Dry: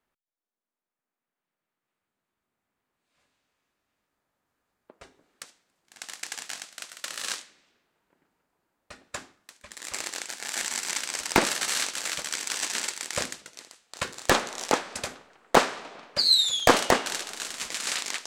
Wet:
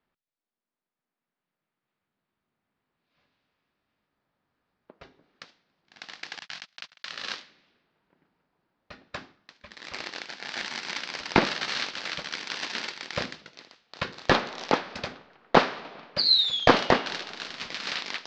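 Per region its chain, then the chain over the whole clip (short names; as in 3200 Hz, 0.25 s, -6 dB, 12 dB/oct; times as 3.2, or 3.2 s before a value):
6.39–7.13 gate -42 dBFS, range -48 dB + bell 380 Hz -11.5 dB 1.8 oct + fast leveller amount 50%
whole clip: steep low-pass 5000 Hz 36 dB/oct; bell 160 Hz +5.5 dB 1.2 oct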